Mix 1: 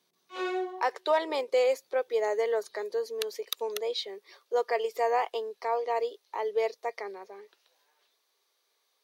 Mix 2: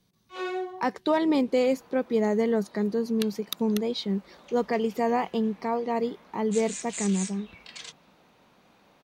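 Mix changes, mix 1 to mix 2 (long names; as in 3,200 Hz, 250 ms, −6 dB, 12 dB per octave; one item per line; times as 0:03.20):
speech: remove Butterworth high-pass 430 Hz 36 dB per octave
second sound: unmuted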